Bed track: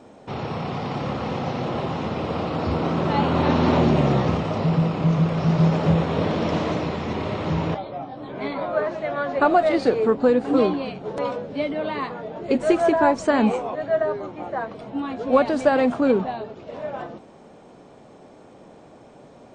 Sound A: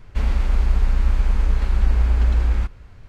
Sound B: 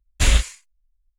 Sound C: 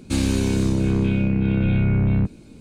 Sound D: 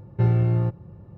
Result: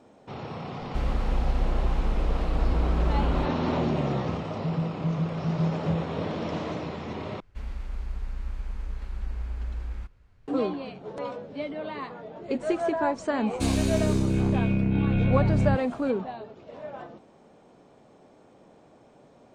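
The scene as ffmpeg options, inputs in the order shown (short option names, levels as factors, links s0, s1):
-filter_complex "[1:a]asplit=2[s0][s1];[0:a]volume=0.398,asplit=2[s2][s3];[s2]atrim=end=7.404[s4];[s1]atrim=end=3.08,asetpts=PTS-STARTPTS,volume=0.168[s5];[s3]atrim=start=10.476[s6];[s0]atrim=end=3.08,asetpts=PTS-STARTPTS,volume=0.398,afade=t=in:d=0.004:c=hsin,afade=t=out:st=3.076:d=0.004:c=hsin,adelay=790[s7];[3:a]atrim=end=2.6,asetpts=PTS-STARTPTS,volume=0.631,afade=t=in:d=0.004:c=hsin,afade=t=out:st=2.596:d=0.004:c=hsin,adelay=13500[s8];[s4][s5]acrossfade=d=0.004:c1=hsin:c2=hsin[s9];[s9][s6]acrossfade=d=0.004:c1=hsin:c2=hsin[s10];[s10][s7][s8]amix=inputs=3:normalize=0"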